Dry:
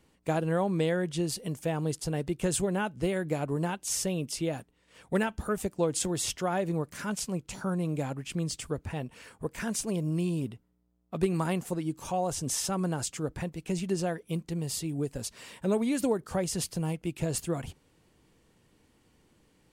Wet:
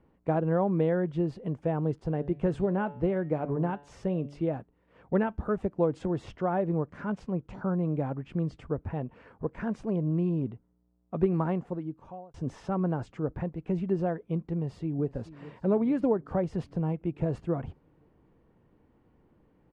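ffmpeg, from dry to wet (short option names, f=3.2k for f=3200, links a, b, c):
-filter_complex "[0:a]asettb=1/sr,asplit=3[a][b][c];[a]atrim=end=1.994[d];[b]atrim=start=1.99:end=4.48,asetpts=PTS-STARTPTS,afade=t=in:d=0.004:c=qsin,afade=t=out:st=2.486:d=0.004:c=qsin,bandreject=f=143.5:t=h:w=4,bandreject=f=287:t=h:w=4,bandreject=f=430.5:t=h:w=4,bandreject=f=574:t=h:w=4,bandreject=f=717.5:t=h:w=4,bandreject=f=861:t=h:w=4,bandreject=f=1.0045k:t=h:w=4,bandreject=f=1.148k:t=h:w=4,bandreject=f=1.2915k:t=h:w=4,bandreject=f=1.435k:t=h:w=4,bandreject=f=1.5785k:t=h:w=4,bandreject=f=1.722k:t=h:w=4,bandreject=f=1.8655k:t=h:w=4,bandreject=f=2.009k:t=h:w=4,bandreject=f=2.1525k:t=h:w=4,bandreject=f=2.296k:t=h:w=4,bandreject=f=2.4395k:t=h:w=4,bandreject=f=2.583k:t=h:w=4,bandreject=f=2.7265k:t=h:w=4,bandreject=f=2.87k:t=h:w=4,bandreject=f=3.0135k:t=h:w=4,bandreject=f=3.157k:t=h:w=4,bandreject=f=3.3005k:t=h:w=4,bandreject=f=3.444k:t=h:w=4,bandreject=f=3.5875k:t=h:w=4,bandreject=f=3.731k:t=h:w=4,bandreject=f=3.8745k:t=h:w=4,bandreject=f=4.018k:t=h:w=4,bandreject=f=4.1615k:t=h:w=4,bandreject=f=4.305k:t=h:w=4,bandreject=f=4.4485k:t=h:w=4,bandreject=f=4.592k:t=h:w=4[e];[c]atrim=start=4.476[f];[d][e]acrossfade=d=0.004:c1=hsin:c2=qsin[g];[g][f]acrossfade=d=0.004:c1=qsin:c2=hsin,asplit=2[h][i];[i]afade=t=in:st=14.54:d=0.01,afade=t=out:st=15.09:d=0.01,aecho=0:1:430|860|1290|1720|2150|2580|3010:0.141254|0.0918149|0.0596797|0.0387918|0.0252147|0.0163895|0.0106532[j];[h][j]amix=inputs=2:normalize=0,asplit=2[k][l];[k]atrim=end=12.34,asetpts=PTS-STARTPTS,afade=t=out:st=11.42:d=0.92[m];[l]atrim=start=12.34,asetpts=PTS-STARTPTS,afade=t=in:d=0.004:c=hsin[n];[m][n]concat=n=2:v=0:a=1,lowpass=1.2k,volume=2dB"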